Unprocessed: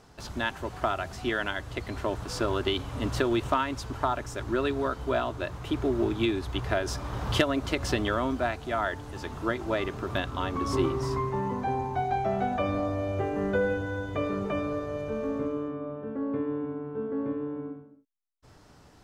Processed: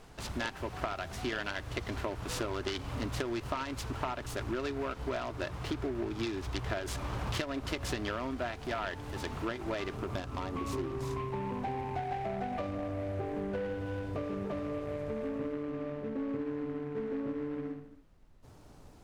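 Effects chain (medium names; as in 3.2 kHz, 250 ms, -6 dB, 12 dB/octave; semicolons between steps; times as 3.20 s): compression 6:1, threshold -32 dBFS, peak gain reduction 13.5 dB; peaking EQ 2.3 kHz +2.5 dB 1.1 oct, from 9.96 s -8.5 dB, from 12.67 s -15 dB; added noise brown -59 dBFS; delay time shaken by noise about 1.2 kHz, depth 0.046 ms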